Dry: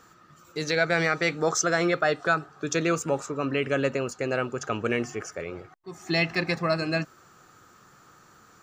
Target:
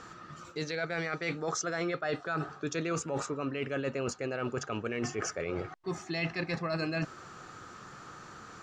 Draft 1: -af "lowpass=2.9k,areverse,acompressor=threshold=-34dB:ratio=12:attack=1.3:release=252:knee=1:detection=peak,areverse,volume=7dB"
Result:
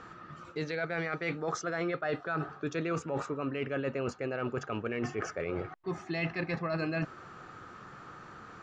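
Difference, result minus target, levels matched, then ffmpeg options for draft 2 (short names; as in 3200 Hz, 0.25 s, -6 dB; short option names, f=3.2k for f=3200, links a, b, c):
8000 Hz band -9.0 dB
-af "lowpass=6k,areverse,acompressor=threshold=-34dB:ratio=12:attack=1.3:release=252:knee=1:detection=peak,areverse,volume=7dB"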